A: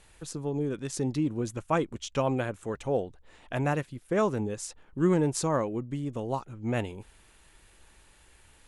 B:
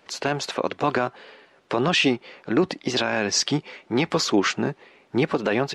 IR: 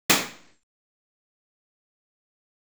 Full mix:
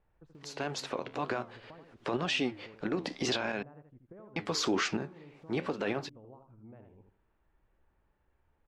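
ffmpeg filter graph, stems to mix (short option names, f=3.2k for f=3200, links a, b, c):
-filter_complex "[0:a]acompressor=threshold=-36dB:ratio=8,lowpass=1.2k,volume=-13.5dB,asplit=3[a][b][c];[b]volume=-6.5dB[d];[1:a]flanger=delay=9.8:depth=5.3:regen=-73:speed=2:shape=triangular,adelay=350,volume=2dB,asplit=3[e][f][g];[e]atrim=end=3.63,asetpts=PTS-STARTPTS,afade=t=out:st=3.626:d=0.004:c=hsin[h];[f]atrim=start=3.63:end=4.36,asetpts=PTS-STARTPTS,volume=0[i];[g]atrim=start=4.36,asetpts=PTS-STARTPTS,afade=t=in:d=0.004:c=hsin[j];[h][i][j]concat=n=3:v=0:a=1[k];[c]apad=whole_len=268726[l];[k][l]sidechaincompress=threshold=-60dB:ratio=5:attack=22:release=165[m];[d]aecho=0:1:80|160|240|320:1|0.24|0.0576|0.0138[n];[a][m][n]amix=inputs=3:normalize=0,alimiter=limit=-21.5dB:level=0:latency=1:release=36"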